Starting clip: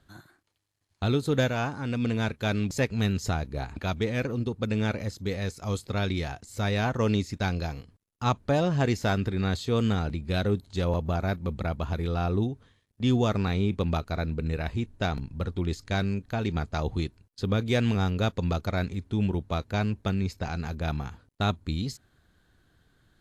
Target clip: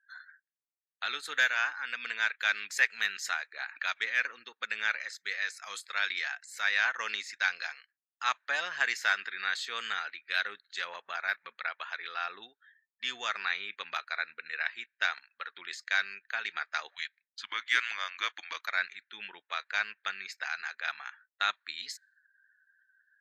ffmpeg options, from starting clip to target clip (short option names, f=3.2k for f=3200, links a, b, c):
-filter_complex "[0:a]asplit=3[a][b][c];[a]afade=t=out:st=16.9:d=0.02[d];[b]afreqshift=-190,afade=t=in:st=16.9:d=0.02,afade=t=out:st=18.66:d=0.02[e];[c]afade=t=in:st=18.66:d=0.02[f];[d][e][f]amix=inputs=3:normalize=0,highpass=f=1.7k:t=q:w=3.4,afftdn=nr=33:nf=-56"